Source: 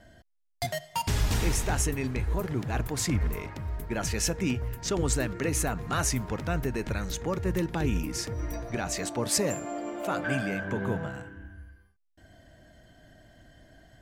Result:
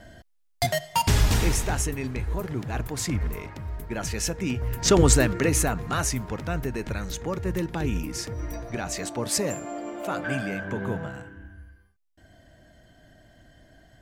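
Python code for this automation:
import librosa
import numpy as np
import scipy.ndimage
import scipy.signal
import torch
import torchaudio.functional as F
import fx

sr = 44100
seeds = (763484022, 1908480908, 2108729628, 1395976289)

y = fx.gain(x, sr, db=fx.line((1.1, 7.0), (1.87, 0.0), (4.49, 0.0), (4.91, 11.0), (6.13, 0.5)))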